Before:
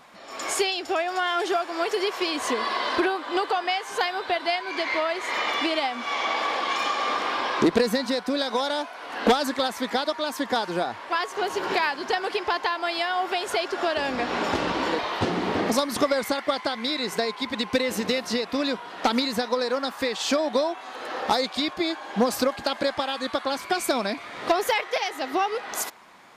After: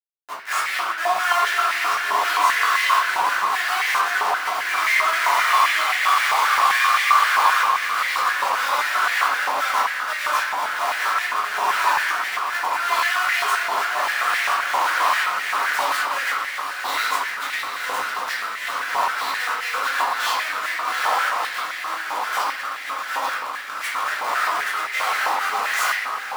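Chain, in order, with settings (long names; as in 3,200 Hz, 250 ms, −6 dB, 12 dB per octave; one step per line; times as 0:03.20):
sub-octave generator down 1 octave, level +3 dB
automatic gain control gain up to 11 dB
volume swells 625 ms
comparator with hysteresis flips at −32 dBFS
feedback delay with all-pass diffusion 772 ms, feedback 62%, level −8 dB
flanger 0.15 Hz, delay 7.3 ms, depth 3.6 ms, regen −54%
0:21.09–0:22.16: hard clipping −24.5 dBFS, distortion −27 dB
convolution reverb RT60 1.2 s, pre-delay 3 ms, DRR −9 dB
high-pass on a step sequencer 7.6 Hz 950–1,900 Hz
level −6 dB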